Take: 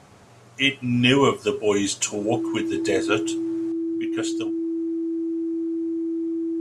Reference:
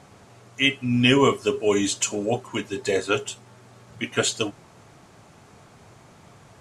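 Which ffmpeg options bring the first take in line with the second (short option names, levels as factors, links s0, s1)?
-af "bandreject=f=330:w=30,asetnsamples=n=441:p=0,asendcmd='3.72 volume volume 9.5dB',volume=1"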